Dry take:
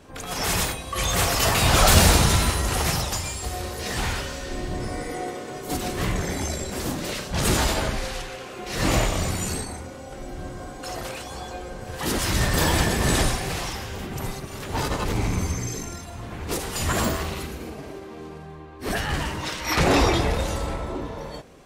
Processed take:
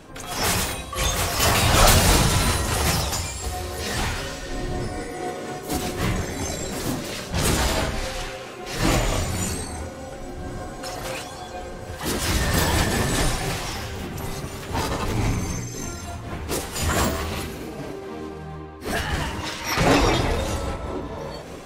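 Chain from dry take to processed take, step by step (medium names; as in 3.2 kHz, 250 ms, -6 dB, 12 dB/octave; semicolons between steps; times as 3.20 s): reverse; upward compressor, threshold -28 dBFS; reverse; flange 0.45 Hz, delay 6 ms, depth 8.1 ms, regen -45%; random flutter of the level, depth 60%; trim +7.5 dB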